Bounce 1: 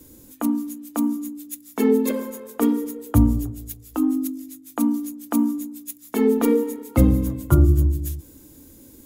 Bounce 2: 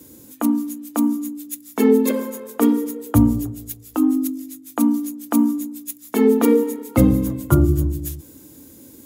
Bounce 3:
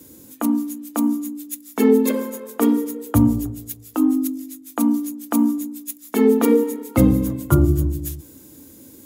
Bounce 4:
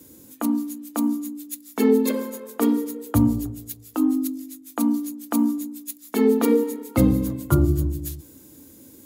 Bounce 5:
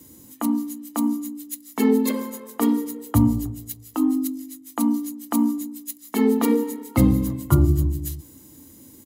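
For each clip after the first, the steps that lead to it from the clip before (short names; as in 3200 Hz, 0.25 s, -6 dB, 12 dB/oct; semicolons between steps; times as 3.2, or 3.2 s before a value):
HPF 100 Hz 12 dB/oct; gain +3.5 dB
de-hum 59.58 Hz, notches 18
dynamic EQ 4300 Hz, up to +6 dB, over -56 dBFS, Q 3.6; gain -3 dB
comb 1 ms, depth 38%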